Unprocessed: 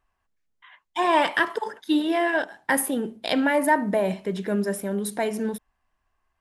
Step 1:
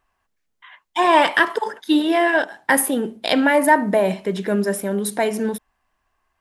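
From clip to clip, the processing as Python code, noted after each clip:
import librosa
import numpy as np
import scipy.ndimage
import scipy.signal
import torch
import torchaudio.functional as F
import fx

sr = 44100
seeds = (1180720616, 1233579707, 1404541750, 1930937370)

y = fx.low_shelf(x, sr, hz=150.0, db=-6.0)
y = F.gain(torch.from_numpy(y), 6.0).numpy()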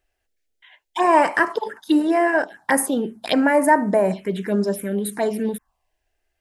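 y = fx.env_phaser(x, sr, low_hz=180.0, high_hz=3500.0, full_db=-14.5)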